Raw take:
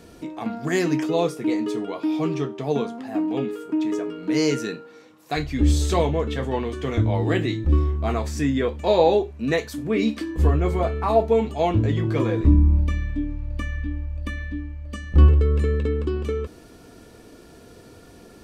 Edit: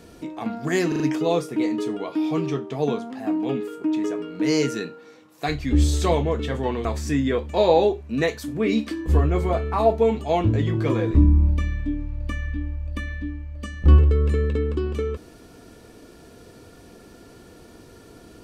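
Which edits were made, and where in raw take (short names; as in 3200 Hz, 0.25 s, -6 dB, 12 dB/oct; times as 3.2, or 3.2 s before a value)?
0.88 stutter 0.04 s, 4 plays
6.73–8.15 cut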